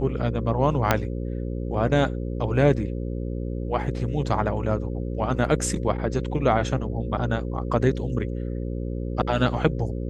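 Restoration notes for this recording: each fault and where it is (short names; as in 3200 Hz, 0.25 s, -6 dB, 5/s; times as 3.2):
buzz 60 Hz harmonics 9 -29 dBFS
0.91 pop -3 dBFS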